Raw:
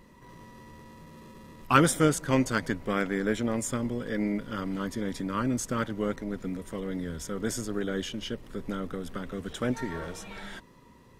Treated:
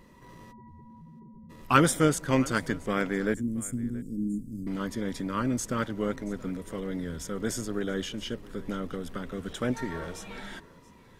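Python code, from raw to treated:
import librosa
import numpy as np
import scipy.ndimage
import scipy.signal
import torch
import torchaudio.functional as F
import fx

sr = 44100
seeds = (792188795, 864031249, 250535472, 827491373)

p1 = fx.spec_expand(x, sr, power=3.3, at=(0.51, 1.49), fade=0.02)
p2 = fx.ellip_bandstop(p1, sr, low_hz=280.0, high_hz=7800.0, order=3, stop_db=50, at=(3.34, 4.67))
y = p2 + fx.echo_single(p2, sr, ms=677, db=-21.0, dry=0)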